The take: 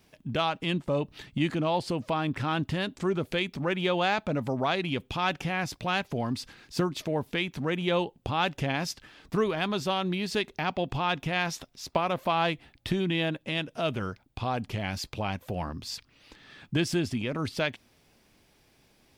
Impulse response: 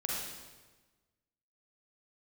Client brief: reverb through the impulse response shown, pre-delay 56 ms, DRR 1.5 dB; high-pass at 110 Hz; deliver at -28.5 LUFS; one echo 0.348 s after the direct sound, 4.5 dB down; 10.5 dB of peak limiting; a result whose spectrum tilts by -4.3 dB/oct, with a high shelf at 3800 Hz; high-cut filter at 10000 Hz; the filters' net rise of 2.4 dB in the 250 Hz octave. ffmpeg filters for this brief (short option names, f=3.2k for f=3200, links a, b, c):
-filter_complex "[0:a]highpass=110,lowpass=10k,equalizer=f=250:t=o:g=4,highshelf=f=3.8k:g=4.5,alimiter=limit=-18.5dB:level=0:latency=1,aecho=1:1:348:0.596,asplit=2[a][b];[1:a]atrim=start_sample=2205,adelay=56[c];[b][c]afir=irnorm=-1:irlink=0,volume=-6dB[d];[a][d]amix=inputs=2:normalize=0,volume=-1.5dB"